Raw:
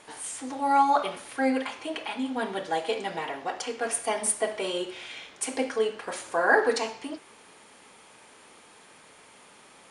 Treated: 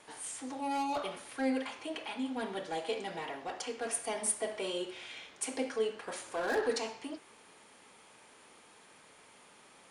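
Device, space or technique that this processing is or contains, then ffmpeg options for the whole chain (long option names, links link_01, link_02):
one-band saturation: -filter_complex "[0:a]acrossover=split=550|2600[link_01][link_02][link_03];[link_02]asoftclip=type=tanh:threshold=-32dB[link_04];[link_01][link_04][link_03]amix=inputs=3:normalize=0,volume=-5.5dB"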